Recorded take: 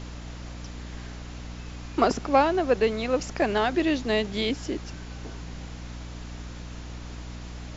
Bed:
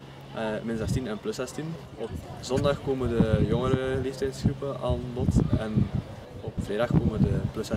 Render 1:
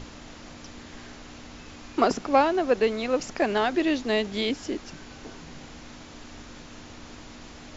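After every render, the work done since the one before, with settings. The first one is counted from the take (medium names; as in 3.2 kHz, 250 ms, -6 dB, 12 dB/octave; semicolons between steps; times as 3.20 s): hum notches 60/120/180 Hz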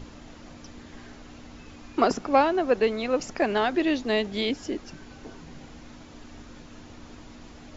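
noise reduction 6 dB, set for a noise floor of -45 dBFS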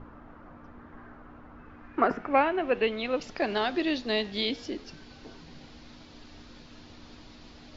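flange 0.34 Hz, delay 8.6 ms, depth 6 ms, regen -88%; low-pass sweep 1.3 kHz -> 4.5 kHz, 1.56–3.51 s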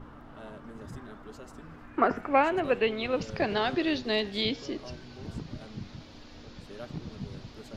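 add bed -16.5 dB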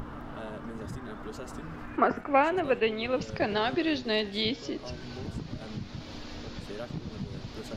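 upward compressor, threshold -31 dBFS; attacks held to a fixed rise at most 540 dB/s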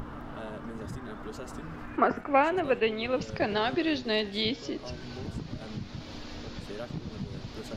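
no audible change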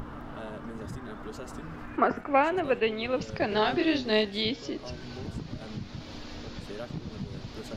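3.49–4.25 s: doubling 28 ms -3 dB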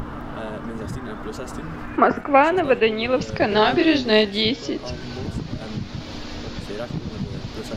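trim +8.5 dB; peak limiter -2 dBFS, peak gain reduction 1 dB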